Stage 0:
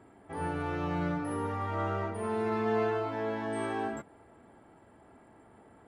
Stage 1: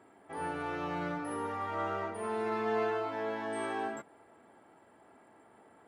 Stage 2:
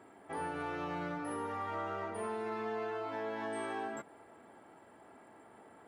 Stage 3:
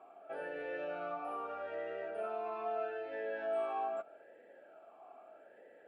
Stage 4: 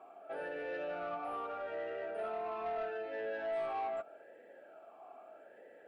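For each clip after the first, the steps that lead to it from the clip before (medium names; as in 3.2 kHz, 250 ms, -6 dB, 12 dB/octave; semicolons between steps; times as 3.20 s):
high-pass 390 Hz 6 dB/octave
compression, threshold -38 dBFS, peak gain reduction 10 dB; trim +2.5 dB
talking filter a-e 0.79 Hz; trim +10 dB
saturation -34 dBFS, distortion -17 dB; trim +2 dB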